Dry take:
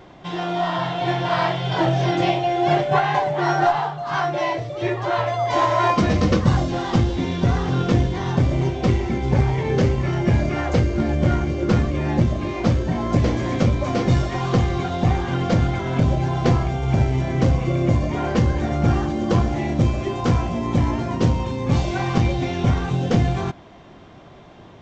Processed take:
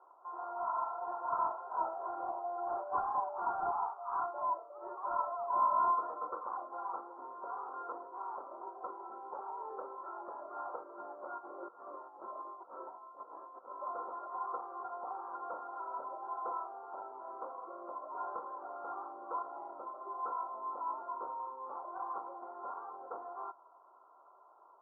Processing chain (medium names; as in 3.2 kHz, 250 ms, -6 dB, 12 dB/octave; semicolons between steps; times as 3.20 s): high-pass 720 Hz 24 dB/octave; 11.38–13.72 s: compressor with a negative ratio -37 dBFS, ratio -0.5; saturation -16.5 dBFS, distortion -17 dB; rippled Chebyshev low-pass 1.4 kHz, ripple 9 dB; trim -4 dB